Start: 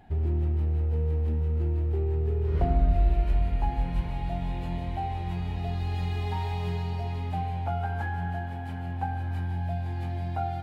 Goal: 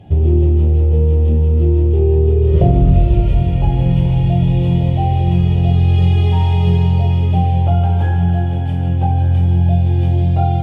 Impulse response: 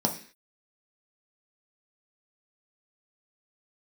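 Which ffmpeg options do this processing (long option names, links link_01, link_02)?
-filter_complex "[1:a]atrim=start_sample=2205,asetrate=26460,aresample=44100[link_01];[0:a][link_01]afir=irnorm=-1:irlink=0,alimiter=level_in=-1.5dB:limit=-1dB:release=50:level=0:latency=1,volume=-1dB"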